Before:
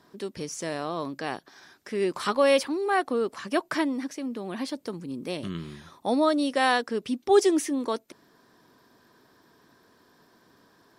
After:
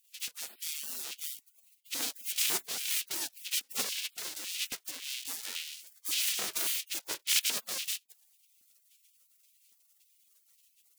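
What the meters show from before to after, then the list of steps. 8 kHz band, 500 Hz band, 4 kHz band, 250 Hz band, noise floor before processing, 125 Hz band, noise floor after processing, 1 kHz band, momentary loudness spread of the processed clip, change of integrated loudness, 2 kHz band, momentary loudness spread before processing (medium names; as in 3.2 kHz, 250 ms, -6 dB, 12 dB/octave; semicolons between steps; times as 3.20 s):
+7.5 dB, -27.5 dB, +3.0 dB, -27.5 dB, -62 dBFS, under -20 dB, -70 dBFS, -21.0 dB, 10 LU, -5.5 dB, -8.0 dB, 14 LU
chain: square wave that keeps the level; spectral gate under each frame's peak -30 dB weak; compression 1.5:1, threshold -42 dBFS, peak gain reduction 8 dB; LFO high-pass square 1.8 Hz 270–2700 Hz; trim +6 dB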